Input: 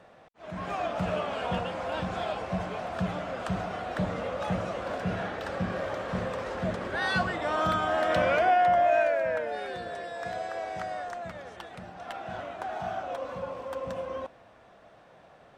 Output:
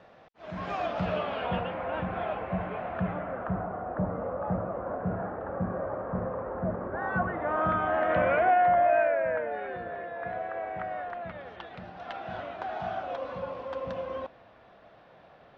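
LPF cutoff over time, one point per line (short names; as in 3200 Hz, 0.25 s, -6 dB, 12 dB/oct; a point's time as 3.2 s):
LPF 24 dB/oct
0.84 s 5700 Hz
1.86 s 2500 Hz
2.93 s 2500 Hz
3.75 s 1300 Hz
6.93 s 1300 Hz
7.86 s 2300 Hz
10.73 s 2300 Hz
11.9 s 4700 Hz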